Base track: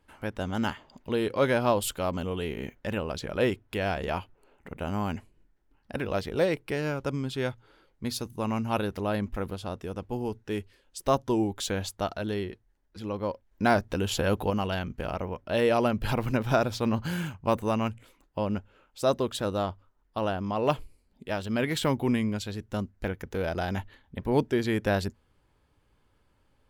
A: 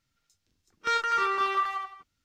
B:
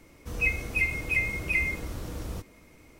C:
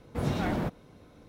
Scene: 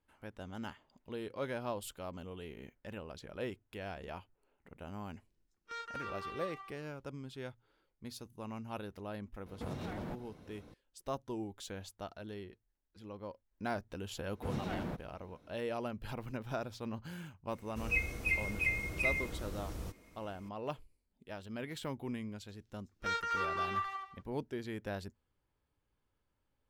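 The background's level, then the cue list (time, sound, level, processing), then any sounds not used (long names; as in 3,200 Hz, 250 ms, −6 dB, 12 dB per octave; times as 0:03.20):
base track −14.5 dB
0:04.84: mix in A −17.5 dB
0:09.46: mix in C −2.5 dB + downward compressor 10 to 1, threshold −35 dBFS
0:14.27: mix in C −9.5 dB
0:17.50: mix in B −6.5 dB
0:22.19: mix in A −9 dB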